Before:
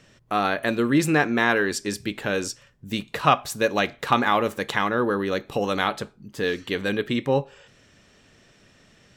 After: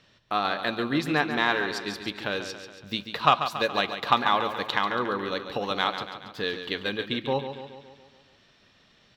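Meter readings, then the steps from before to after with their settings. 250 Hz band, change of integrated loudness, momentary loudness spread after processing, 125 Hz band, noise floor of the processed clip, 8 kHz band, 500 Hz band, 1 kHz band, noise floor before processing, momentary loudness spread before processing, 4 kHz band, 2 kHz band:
-7.0 dB, -3.5 dB, 11 LU, -7.0 dB, -61 dBFS, -12.0 dB, -5.5 dB, -1.0 dB, -57 dBFS, 10 LU, +2.0 dB, -3.0 dB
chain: graphic EQ 1/4/8 kHz +6/+12/-10 dB; Chebyshev shaper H 3 -25 dB, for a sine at 1 dBFS; transient shaper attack +2 dB, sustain -2 dB; on a send: feedback delay 140 ms, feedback 56%, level -9.5 dB; on the sum: trim -6.5 dB

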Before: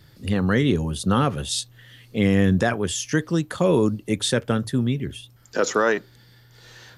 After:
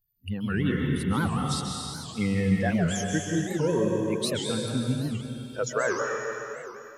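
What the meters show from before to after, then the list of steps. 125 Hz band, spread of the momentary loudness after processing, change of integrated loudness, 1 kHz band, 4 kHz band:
-4.0 dB, 9 LU, -5.5 dB, -5.0 dB, -5.0 dB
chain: expander on every frequency bin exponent 2; plate-style reverb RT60 3 s, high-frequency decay 0.95×, pre-delay 120 ms, DRR -0.5 dB; warped record 78 rpm, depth 250 cents; trim -4 dB

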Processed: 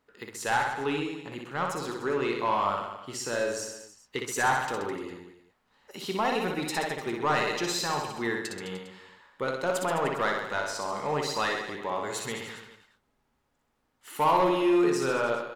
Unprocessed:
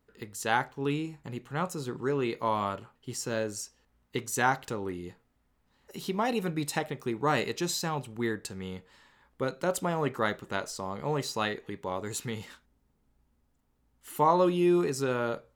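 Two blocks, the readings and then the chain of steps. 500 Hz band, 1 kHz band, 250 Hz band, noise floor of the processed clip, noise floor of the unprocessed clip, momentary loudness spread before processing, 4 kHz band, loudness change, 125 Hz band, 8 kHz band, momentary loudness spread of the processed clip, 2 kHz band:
+2.0 dB, +3.0 dB, 0.0 dB, -74 dBFS, -72 dBFS, 14 LU, +3.5 dB, +2.0 dB, -4.5 dB, +1.0 dB, 14 LU, +4.0 dB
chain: overdrive pedal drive 16 dB, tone 3.7 kHz, clips at -10.5 dBFS; reverse bouncing-ball echo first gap 60 ms, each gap 1.15×, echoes 5; trim -5 dB

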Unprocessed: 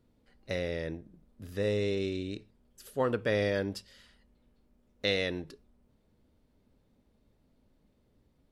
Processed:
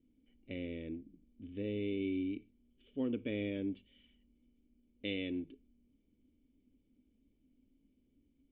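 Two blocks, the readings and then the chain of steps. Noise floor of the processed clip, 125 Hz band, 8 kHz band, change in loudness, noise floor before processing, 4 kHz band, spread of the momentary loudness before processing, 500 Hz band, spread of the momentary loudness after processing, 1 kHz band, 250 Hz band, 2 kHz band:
-75 dBFS, -9.5 dB, under -25 dB, -7.0 dB, -70 dBFS, -11.0 dB, 16 LU, -11.0 dB, 12 LU, under -20 dB, -0.5 dB, -11.5 dB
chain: cascade formant filter i; peaking EQ 150 Hz -9.5 dB 1.6 oct; trim +8.5 dB

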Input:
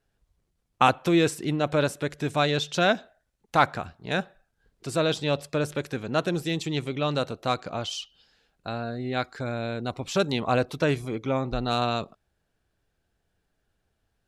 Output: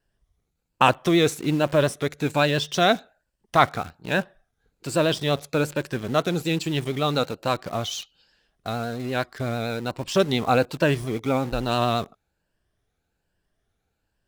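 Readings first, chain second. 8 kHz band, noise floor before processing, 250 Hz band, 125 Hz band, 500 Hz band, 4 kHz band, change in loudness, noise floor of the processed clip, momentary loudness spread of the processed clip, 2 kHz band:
+3.5 dB, -76 dBFS, +2.5 dB, +3.0 dB, +3.0 dB, +3.0 dB, +3.0 dB, -78 dBFS, 9 LU, +2.5 dB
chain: drifting ripple filter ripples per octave 1.3, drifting +1.2 Hz, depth 7 dB; in parallel at -6 dB: bit crusher 6-bit; on the sum: vibrato 8.7 Hz 42 cents; trim -1 dB

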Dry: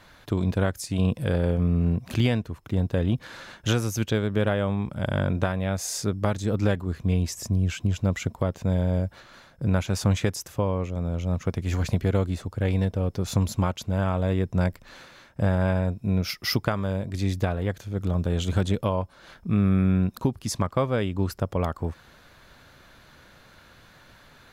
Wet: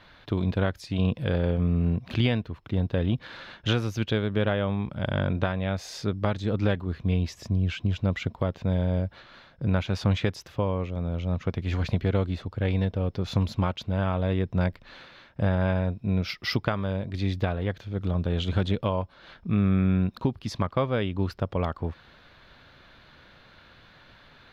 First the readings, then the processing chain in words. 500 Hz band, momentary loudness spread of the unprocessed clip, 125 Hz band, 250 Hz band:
-1.5 dB, 5 LU, -1.5 dB, -1.5 dB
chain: resonant high shelf 5.6 kHz -14 dB, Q 1.5; trim -1.5 dB

